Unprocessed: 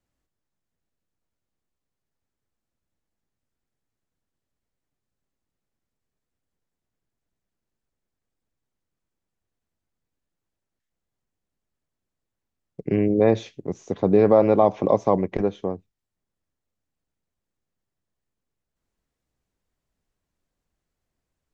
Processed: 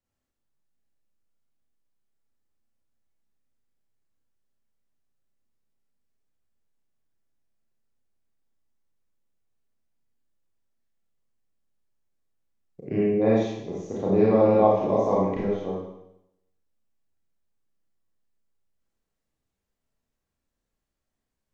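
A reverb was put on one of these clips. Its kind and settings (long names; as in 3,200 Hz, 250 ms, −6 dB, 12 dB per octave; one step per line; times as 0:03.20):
four-comb reverb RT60 0.81 s, combs from 28 ms, DRR −6 dB
level −9 dB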